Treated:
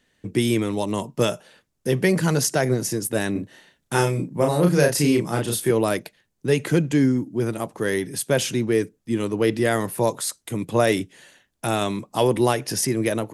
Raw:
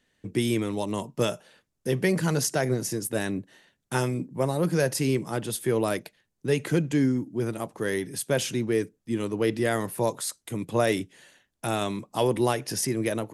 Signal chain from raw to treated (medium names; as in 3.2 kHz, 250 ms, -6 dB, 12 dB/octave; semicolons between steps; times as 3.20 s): 3.32–5.71 s: doubling 34 ms -3 dB; trim +4.5 dB